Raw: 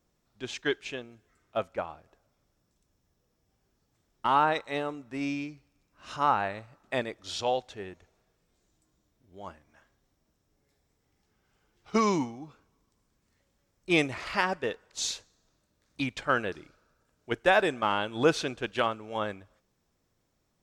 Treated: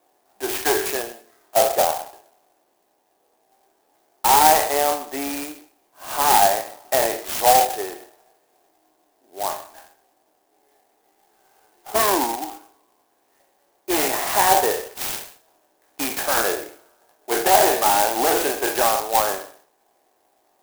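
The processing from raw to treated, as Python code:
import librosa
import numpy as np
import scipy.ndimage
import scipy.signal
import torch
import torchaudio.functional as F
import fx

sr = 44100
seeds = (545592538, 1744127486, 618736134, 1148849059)

p1 = fx.spec_trails(x, sr, decay_s=0.44)
p2 = fx.fold_sine(p1, sr, drive_db=15, ceiling_db=-8.5)
p3 = p1 + (p2 * 10.0 ** (-5.0 / 20.0))
p4 = fx.cabinet(p3, sr, low_hz=390.0, low_slope=24, high_hz=3300.0, hz=(500.0, 760.0, 1300.0, 2300.0), db=(-7, 8, -9, -6))
p5 = fx.doubler(p4, sr, ms=26.0, db=-10.5)
p6 = p5 + 10.0 ** (-17.0 / 20.0) * np.pad(p5, (int(127 * sr / 1000.0), 0))[:len(p5)]
y = fx.clock_jitter(p6, sr, seeds[0], jitter_ms=0.094)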